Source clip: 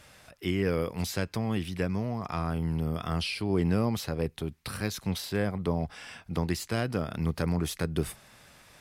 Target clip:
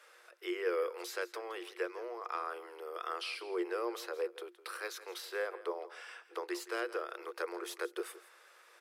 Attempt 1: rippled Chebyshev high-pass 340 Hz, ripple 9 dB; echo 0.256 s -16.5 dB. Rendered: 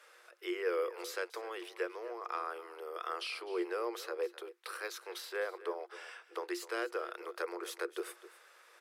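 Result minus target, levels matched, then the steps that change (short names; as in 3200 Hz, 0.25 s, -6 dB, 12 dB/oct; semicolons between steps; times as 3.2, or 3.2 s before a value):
echo 89 ms late
change: echo 0.167 s -16.5 dB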